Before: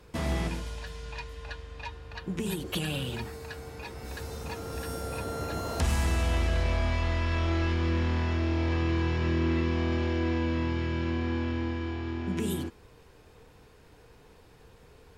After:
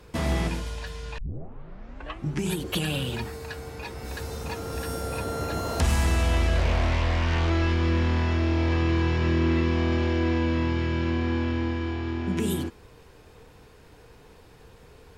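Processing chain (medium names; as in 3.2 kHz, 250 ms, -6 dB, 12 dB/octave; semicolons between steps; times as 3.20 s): 1.18 s: tape start 1.38 s; 6.58–7.50 s: loudspeaker Doppler distortion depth 0.52 ms; trim +4 dB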